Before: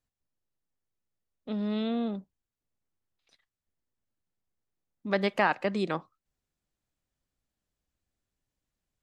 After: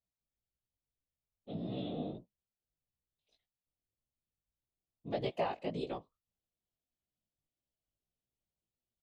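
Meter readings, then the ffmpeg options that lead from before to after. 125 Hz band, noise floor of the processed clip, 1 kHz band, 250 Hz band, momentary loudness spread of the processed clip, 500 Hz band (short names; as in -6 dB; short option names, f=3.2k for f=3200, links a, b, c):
-4.5 dB, under -85 dBFS, -10.0 dB, -10.5 dB, 10 LU, -7.0 dB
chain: -af "equalizer=f=910:t=o:w=0.28:g=-2.5,afftfilt=real='hypot(re,im)*cos(2*PI*random(0))':imag='hypot(re,im)*sin(2*PI*random(1))':win_size=512:overlap=0.75,firequalizer=gain_entry='entry(110,0);entry(650,5);entry(1500,-13);entry(3000,4);entry(5300,-3)':delay=0.05:min_phase=1,flanger=delay=15.5:depth=4.4:speed=1.7,volume=-1.5dB"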